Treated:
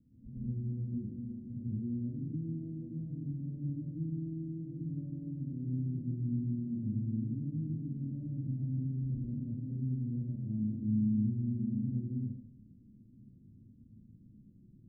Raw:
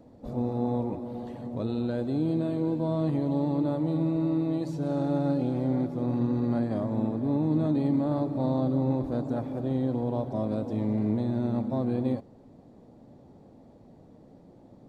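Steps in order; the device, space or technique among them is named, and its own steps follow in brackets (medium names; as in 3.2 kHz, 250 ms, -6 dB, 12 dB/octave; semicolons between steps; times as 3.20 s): club heard from the street (peak limiter -23.5 dBFS, peak gain reduction 8 dB; low-pass 220 Hz 24 dB/octave; reverberation RT60 0.55 s, pre-delay 110 ms, DRR -5.5 dB); trim -9 dB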